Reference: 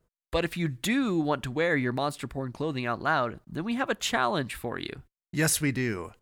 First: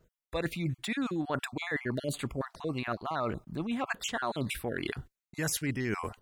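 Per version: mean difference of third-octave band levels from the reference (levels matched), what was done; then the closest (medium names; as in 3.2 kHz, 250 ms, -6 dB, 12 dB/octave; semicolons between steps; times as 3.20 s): 5.0 dB: random holes in the spectrogram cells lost 29%; reverse; compression 6:1, threshold -36 dBFS, peak gain reduction 14 dB; reverse; trim +6 dB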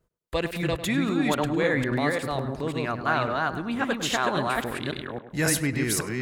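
7.0 dB: chunks repeated in reverse 273 ms, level -1.5 dB; on a send: tape echo 101 ms, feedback 58%, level -11 dB, low-pass 2.4 kHz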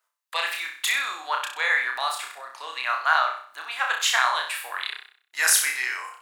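15.0 dB: high-pass 930 Hz 24 dB/octave; on a send: flutter echo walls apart 5.4 m, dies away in 0.49 s; on the sum: trim +6 dB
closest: first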